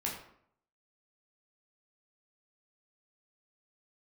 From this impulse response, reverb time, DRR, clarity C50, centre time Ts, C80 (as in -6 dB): 0.65 s, -3.5 dB, 5.0 dB, 36 ms, 8.0 dB